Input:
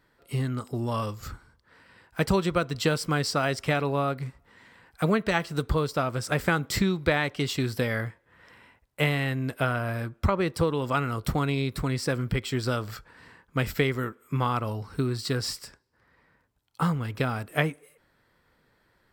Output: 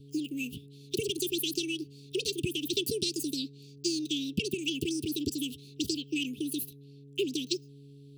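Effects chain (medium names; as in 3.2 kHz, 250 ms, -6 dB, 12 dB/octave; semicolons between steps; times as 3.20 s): hum 60 Hz, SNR 19 dB; speed mistake 33 rpm record played at 78 rpm; Chebyshev band-stop 430–2600 Hz, order 5; trim -2.5 dB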